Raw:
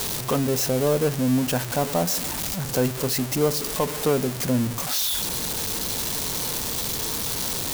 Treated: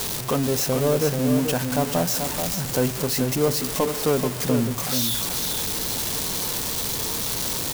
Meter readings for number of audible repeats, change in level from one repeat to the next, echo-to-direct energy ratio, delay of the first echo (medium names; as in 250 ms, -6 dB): 1, no regular repeats, -6.5 dB, 434 ms